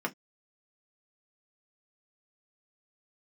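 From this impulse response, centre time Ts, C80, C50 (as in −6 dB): 6 ms, 40.0 dB, 26.0 dB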